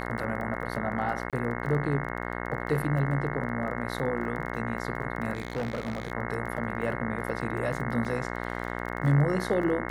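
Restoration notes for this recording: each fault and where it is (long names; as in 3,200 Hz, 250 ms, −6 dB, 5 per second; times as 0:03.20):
mains buzz 60 Hz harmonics 36 −34 dBFS
surface crackle 23 per second −35 dBFS
0:01.30–0:01.33: drop-out 27 ms
0:05.33–0:06.12: clipping −26.5 dBFS
0:08.05: drop-out 2.6 ms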